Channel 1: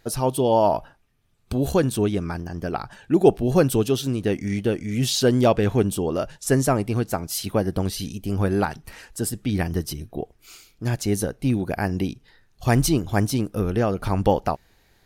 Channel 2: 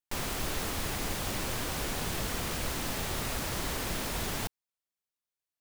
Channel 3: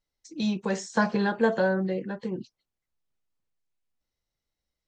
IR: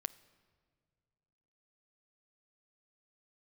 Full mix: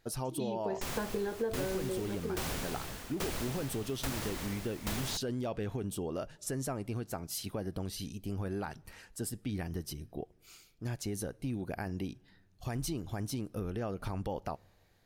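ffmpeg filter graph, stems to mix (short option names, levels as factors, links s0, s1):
-filter_complex "[0:a]alimiter=limit=0.2:level=0:latency=1:release=19,volume=0.237,asplit=2[s0][s1];[s1]volume=0.376[s2];[1:a]aeval=exprs='val(0)*pow(10,-20*if(lt(mod(1.2*n/s,1),2*abs(1.2)/1000),1-mod(1.2*n/s,1)/(2*abs(1.2)/1000),(mod(1.2*n/s,1)-2*abs(1.2)/1000)/(1-2*abs(1.2)/1000))/20)':c=same,adelay=700,volume=1,asplit=2[s3][s4];[s4]volume=0.631[s5];[2:a]equalizer=f=400:t=o:w=0.59:g=13.5,volume=0.316[s6];[3:a]atrim=start_sample=2205[s7];[s2][s5]amix=inputs=2:normalize=0[s8];[s8][s7]afir=irnorm=-1:irlink=0[s9];[s0][s3][s6][s9]amix=inputs=4:normalize=0,acompressor=threshold=0.0251:ratio=4"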